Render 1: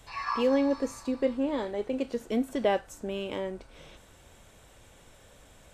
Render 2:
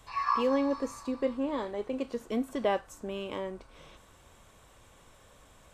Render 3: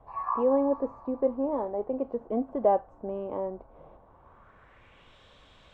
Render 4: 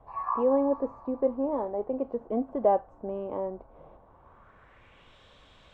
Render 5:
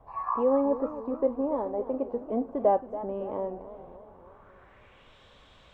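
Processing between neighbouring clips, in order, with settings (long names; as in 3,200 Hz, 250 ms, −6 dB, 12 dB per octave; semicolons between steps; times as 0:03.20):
parametric band 1,100 Hz +8.5 dB 0.34 octaves; level −3 dB
low-pass filter sweep 760 Hz → 3,600 Hz, 0:04.01–0:05.19
no processing that can be heard
feedback echo with a swinging delay time 275 ms, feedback 56%, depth 170 cents, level −13.5 dB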